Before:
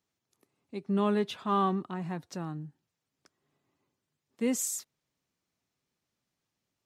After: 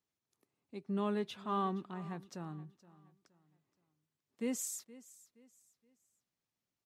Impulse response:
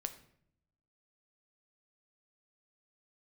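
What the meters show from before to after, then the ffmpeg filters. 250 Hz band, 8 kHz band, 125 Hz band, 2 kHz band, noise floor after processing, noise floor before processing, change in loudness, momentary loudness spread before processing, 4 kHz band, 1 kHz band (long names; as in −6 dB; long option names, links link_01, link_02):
−7.5 dB, −7.5 dB, −7.5 dB, −7.5 dB, below −85 dBFS, below −85 dBFS, −7.5 dB, 15 LU, −7.5 dB, −7.5 dB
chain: -af "aecho=1:1:471|942|1413:0.112|0.0381|0.013,volume=-7.5dB"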